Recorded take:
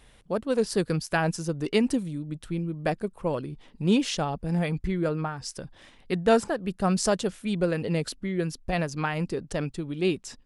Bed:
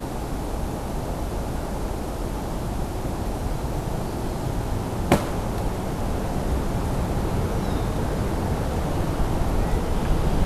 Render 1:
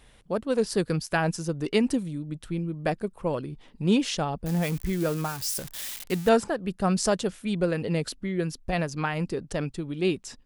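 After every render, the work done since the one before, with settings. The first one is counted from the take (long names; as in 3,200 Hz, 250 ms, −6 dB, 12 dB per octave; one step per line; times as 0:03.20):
0:04.46–0:06.29: spike at every zero crossing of −25.5 dBFS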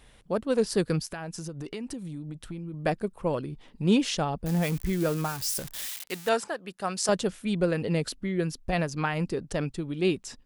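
0:01.10–0:02.74: downward compressor 8 to 1, threshold −33 dBFS
0:05.86–0:07.09: high-pass filter 840 Hz 6 dB per octave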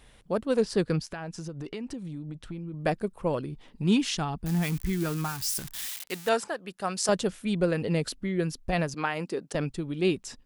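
0:00.61–0:02.81: high-frequency loss of the air 58 metres
0:03.83–0:05.85: parametric band 540 Hz −14.5 dB 0.48 octaves
0:08.94–0:09.55: high-pass filter 250 Hz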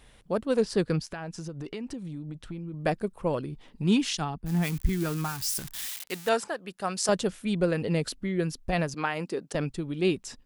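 0:04.13–0:04.89: multiband upward and downward expander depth 100%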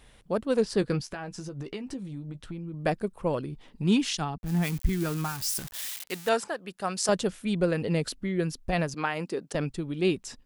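0:00.80–0:02.51: double-tracking delay 15 ms −9.5 dB
0:04.38–0:05.86: centre clipping without the shift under −46 dBFS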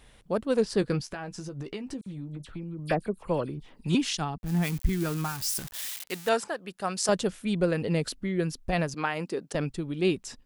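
0:02.01–0:03.95: all-pass dispersion lows, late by 52 ms, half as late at 2,800 Hz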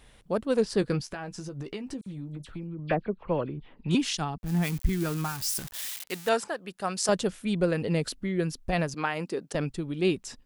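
0:02.67–0:03.91: low-pass filter 3,300 Hz 24 dB per octave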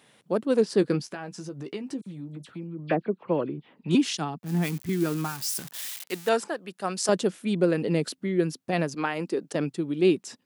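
high-pass filter 140 Hz 24 dB per octave
dynamic equaliser 330 Hz, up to +6 dB, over −41 dBFS, Q 1.6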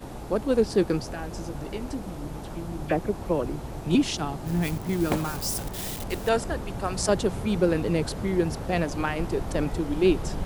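mix in bed −9 dB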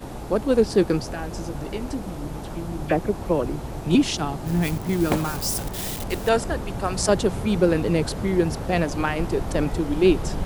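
level +3.5 dB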